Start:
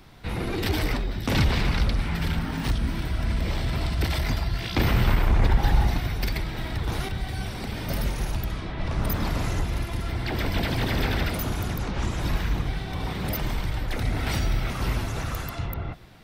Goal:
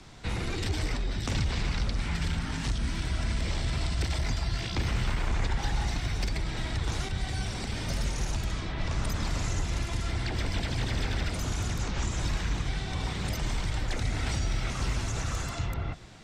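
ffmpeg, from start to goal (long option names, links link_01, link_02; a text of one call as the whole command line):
ffmpeg -i in.wav -filter_complex "[0:a]lowpass=frequency=7300:width_type=q:width=3.1,acrossover=split=120|1200[link_01][link_02][link_03];[link_01]acompressor=threshold=-27dB:ratio=4[link_04];[link_02]acompressor=threshold=-37dB:ratio=4[link_05];[link_03]acompressor=threshold=-37dB:ratio=4[link_06];[link_04][link_05][link_06]amix=inputs=3:normalize=0" out.wav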